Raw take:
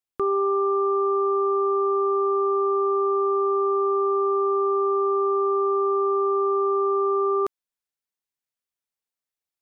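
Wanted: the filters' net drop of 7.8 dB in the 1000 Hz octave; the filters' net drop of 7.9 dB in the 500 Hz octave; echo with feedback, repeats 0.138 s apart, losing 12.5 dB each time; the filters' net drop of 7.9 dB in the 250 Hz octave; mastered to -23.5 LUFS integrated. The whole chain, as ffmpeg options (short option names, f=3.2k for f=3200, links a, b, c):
-af "equalizer=f=250:t=o:g=-7,equalizer=f=500:t=o:g=-6.5,equalizer=f=1k:t=o:g=-8.5,aecho=1:1:138|276|414:0.237|0.0569|0.0137,volume=8.5dB"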